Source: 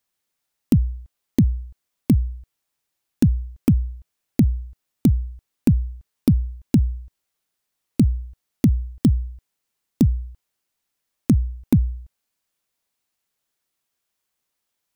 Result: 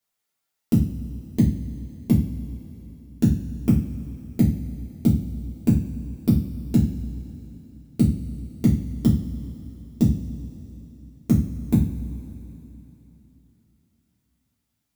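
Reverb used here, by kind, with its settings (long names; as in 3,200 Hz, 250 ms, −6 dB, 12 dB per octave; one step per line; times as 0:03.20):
coupled-rooms reverb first 0.35 s, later 3.5 s, from −20 dB, DRR −7.5 dB
level −8.5 dB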